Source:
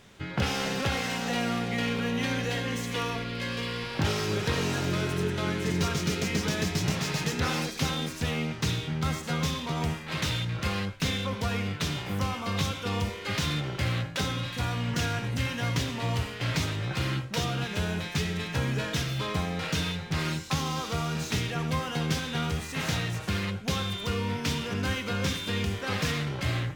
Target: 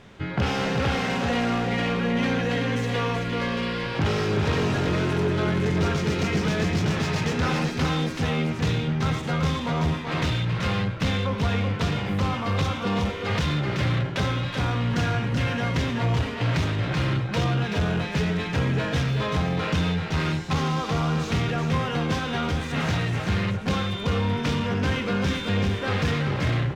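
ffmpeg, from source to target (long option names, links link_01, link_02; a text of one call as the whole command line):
ffmpeg -i in.wav -filter_complex "[0:a]aemphasis=mode=reproduction:type=75kf,asplit=2[link_01][link_02];[link_02]aecho=0:1:380:0.501[link_03];[link_01][link_03]amix=inputs=2:normalize=0,asoftclip=type=tanh:threshold=-24dB,volume=7dB" out.wav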